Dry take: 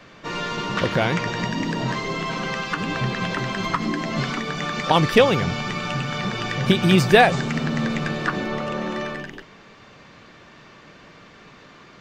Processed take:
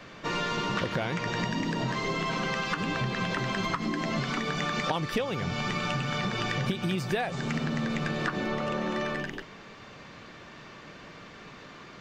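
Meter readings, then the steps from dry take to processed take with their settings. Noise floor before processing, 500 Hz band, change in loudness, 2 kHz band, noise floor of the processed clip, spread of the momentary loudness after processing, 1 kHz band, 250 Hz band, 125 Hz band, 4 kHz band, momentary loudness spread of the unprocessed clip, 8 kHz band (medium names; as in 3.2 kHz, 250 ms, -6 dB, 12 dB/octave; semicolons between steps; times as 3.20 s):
-48 dBFS, -10.0 dB, -8.0 dB, -7.0 dB, -48 dBFS, 17 LU, -8.0 dB, -7.5 dB, -7.5 dB, -7.0 dB, 11 LU, -6.0 dB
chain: compression 10:1, threshold -26 dBFS, peak gain reduction 17.5 dB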